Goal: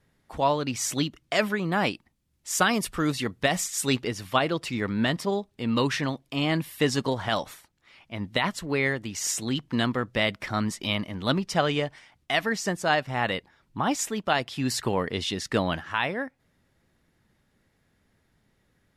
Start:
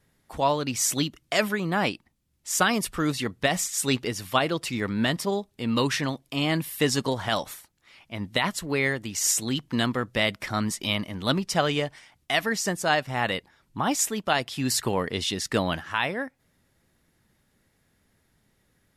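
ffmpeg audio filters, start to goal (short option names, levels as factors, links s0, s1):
-af "asetnsamples=n=441:p=0,asendcmd='1.72 highshelf g -3;4.01 highshelf g -10',highshelf=f=6900:g=-9.5"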